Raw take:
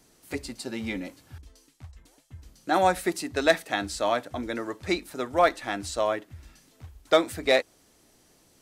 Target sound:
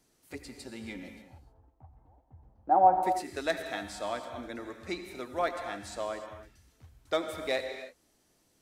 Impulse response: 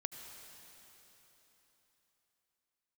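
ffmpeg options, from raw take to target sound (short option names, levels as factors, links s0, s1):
-filter_complex "[0:a]asettb=1/sr,asplit=3[s0][s1][s2];[s0]atrim=end=1.224[s3];[s1]atrim=start=1.22:end=3.03,asetpts=PTS-STARTPTS,afade=t=in:d=0.004:c=qsin,afade=t=out:st=1.806:d=0.004:c=qsin,lowpass=f=810:t=q:w=4.9[s4];[s2]atrim=start=3.026[s5];[s3][s4]acrossfade=d=0.004:c1=hsin:c2=qsin[s6];[s6][s5]acrossfade=d=0.004:c1=qsin:c2=hsin[s7];[1:a]atrim=start_sample=2205,afade=t=out:st=0.37:d=0.01,atrim=end_sample=16758[s8];[s7][s8]afir=irnorm=-1:irlink=0,volume=0.447"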